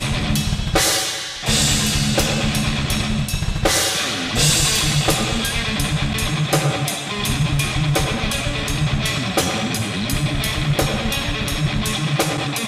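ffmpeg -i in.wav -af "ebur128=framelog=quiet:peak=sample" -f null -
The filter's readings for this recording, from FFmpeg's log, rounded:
Integrated loudness:
  I:         -19.0 LUFS
  Threshold: -29.0 LUFS
Loudness range:
  LRA:         2.6 LU
  Threshold: -38.9 LUFS
  LRA low:   -20.4 LUFS
  LRA high:  -17.7 LUFS
Sample peak:
  Peak:       -6.4 dBFS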